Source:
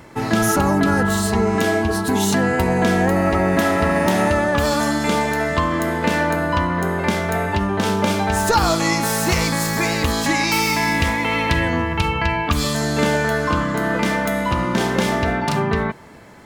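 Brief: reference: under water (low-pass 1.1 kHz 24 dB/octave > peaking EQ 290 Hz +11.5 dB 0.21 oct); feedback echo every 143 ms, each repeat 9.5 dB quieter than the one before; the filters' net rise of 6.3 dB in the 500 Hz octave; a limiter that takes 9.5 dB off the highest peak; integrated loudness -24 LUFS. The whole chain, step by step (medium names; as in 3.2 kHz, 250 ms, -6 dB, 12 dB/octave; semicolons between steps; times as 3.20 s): peaking EQ 500 Hz +7.5 dB; peak limiter -10.5 dBFS; low-pass 1.1 kHz 24 dB/octave; peaking EQ 290 Hz +11.5 dB 0.21 oct; feedback delay 143 ms, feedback 33%, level -9.5 dB; trim -6.5 dB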